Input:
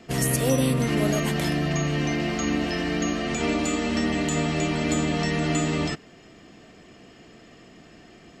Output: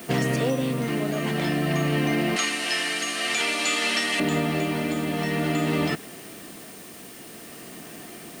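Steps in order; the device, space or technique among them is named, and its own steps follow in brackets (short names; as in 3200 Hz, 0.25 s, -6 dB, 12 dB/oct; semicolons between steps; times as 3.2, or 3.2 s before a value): medium wave at night (BPF 140–3900 Hz; compressor, threshold -27 dBFS, peak gain reduction 9 dB; tremolo 0.5 Hz, depth 34%; whine 9000 Hz -58 dBFS; white noise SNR 20 dB); 2.36–4.2 weighting filter ITU-R 468; gain +7.5 dB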